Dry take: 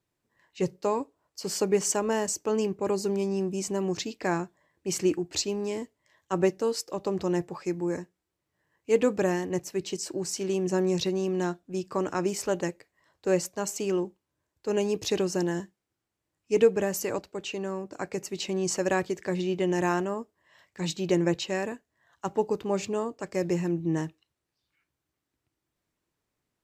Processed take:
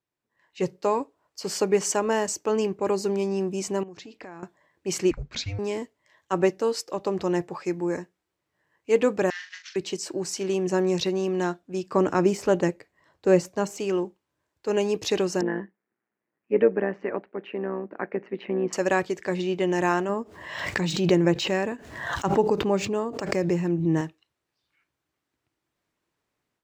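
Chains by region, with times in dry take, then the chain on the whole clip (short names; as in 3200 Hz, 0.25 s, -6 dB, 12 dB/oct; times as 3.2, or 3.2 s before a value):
3.83–4.43 high shelf 4500 Hz -9 dB + compressor 10:1, threshold -41 dBFS + mismatched tape noise reduction decoder only
5.11–5.59 frequency shift -310 Hz + air absorption 120 m
9.3–9.76 CVSD 32 kbps + elliptic high-pass 1500 Hz, stop band 80 dB + doubler 42 ms -8 dB
11.94–13.8 de-esser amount 70% + low shelf 460 Hz +8.5 dB
15.41–18.73 AM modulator 120 Hz, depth 55% + speaker cabinet 160–2300 Hz, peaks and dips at 210 Hz +8 dB, 390 Hz +5 dB, 1800 Hz +5 dB
20.09–24.01 median filter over 3 samples + low shelf 260 Hz +7.5 dB + backwards sustainer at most 51 dB/s
whole clip: LPF 2000 Hz 6 dB/oct; tilt +2 dB/oct; AGC gain up to 10 dB; gain -4.5 dB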